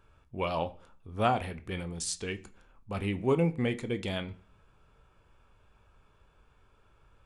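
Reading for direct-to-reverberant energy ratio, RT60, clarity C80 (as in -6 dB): 10.0 dB, 0.40 s, 23.0 dB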